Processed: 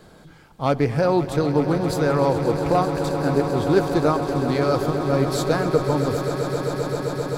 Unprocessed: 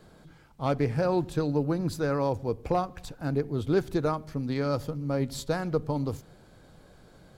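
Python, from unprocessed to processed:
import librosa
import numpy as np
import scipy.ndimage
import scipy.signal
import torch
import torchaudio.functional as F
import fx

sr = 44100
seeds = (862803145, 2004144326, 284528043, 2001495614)

p1 = fx.low_shelf(x, sr, hz=210.0, db=-4.0)
p2 = p1 + fx.echo_swell(p1, sr, ms=131, loudest=8, wet_db=-13.0, dry=0)
y = p2 * 10.0 ** (7.5 / 20.0)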